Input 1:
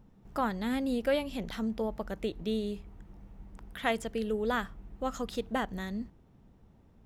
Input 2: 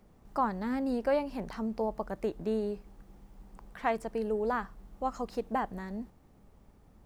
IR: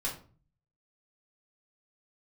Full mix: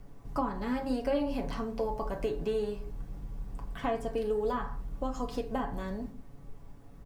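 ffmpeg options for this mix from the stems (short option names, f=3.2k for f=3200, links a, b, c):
-filter_complex "[0:a]lowpass=f=4k:w=0.5412,lowpass=f=4k:w=1.3066,aemphasis=mode=reproduction:type=bsi,volume=-5.5dB[a];[1:a]adelay=0.4,volume=-0.5dB,asplit=2[b][c];[c]volume=-3.5dB[d];[2:a]atrim=start_sample=2205[e];[d][e]afir=irnorm=-1:irlink=0[f];[a][b][f]amix=inputs=3:normalize=0,acrossover=split=440|1500[g][h][i];[g]acompressor=threshold=-33dB:ratio=4[j];[h]acompressor=threshold=-36dB:ratio=4[k];[i]acompressor=threshold=-46dB:ratio=4[l];[j][k][l]amix=inputs=3:normalize=0,aecho=1:1:7.1:0.55"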